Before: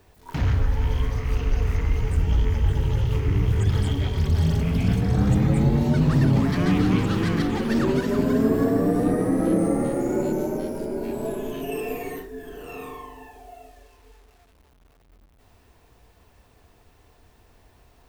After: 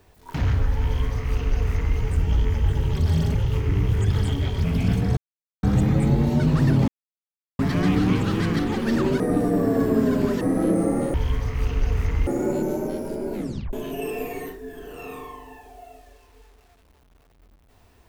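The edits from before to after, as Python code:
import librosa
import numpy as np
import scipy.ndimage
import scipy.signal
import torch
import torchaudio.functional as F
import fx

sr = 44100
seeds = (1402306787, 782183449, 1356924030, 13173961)

y = fx.edit(x, sr, fx.duplicate(start_s=0.84, length_s=1.13, to_s=9.97),
    fx.move(start_s=4.23, length_s=0.41, to_s=2.94),
    fx.insert_silence(at_s=5.17, length_s=0.46),
    fx.insert_silence(at_s=6.42, length_s=0.71),
    fx.reverse_span(start_s=8.03, length_s=1.21),
    fx.tape_stop(start_s=11.04, length_s=0.39), tone=tone)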